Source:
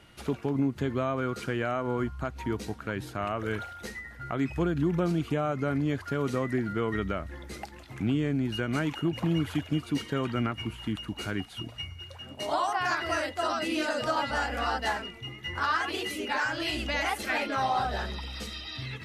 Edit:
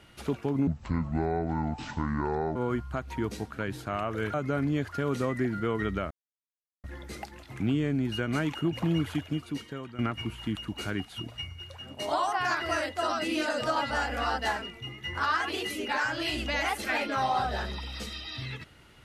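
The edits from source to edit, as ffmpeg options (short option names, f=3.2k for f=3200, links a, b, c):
-filter_complex "[0:a]asplit=6[a][b][c][d][e][f];[a]atrim=end=0.674[g];[b]atrim=start=0.67:end=1.84,asetpts=PTS-STARTPTS,asetrate=27342,aresample=44100[h];[c]atrim=start=1.836:end=3.622[i];[d]atrim=start=5.468:end=7.24,asetpts=PTS-STARTPTS,afade=t=out:st=1.768:d=0.004:c=hsin,apad=pad_dur=0.73[j];[e]atrim=start=7.24:end=10.39,asetpts=PTS-STARTPTS,afade=t=in:d=0.004:c=hsin,afade=t=out:st=2.17:d=0.98:silence=0.177828[k];[f]atrim=start=10.39,asetpts=PTS-STARTPTS,afade=t=in:d=0.004:c=hsin:silence=0.177828[l];[g][h]acrossfade=d=0.004:c1=hsin:c2=hsin[m];[m][i]acrossfade=d=0.004:c1=hsin:c2=hsin[n];[j][k][l]concat=n=3:v=0:a=1[o];[n][o]acrossfade=d=0.004:c1=hsin:c2=hsin"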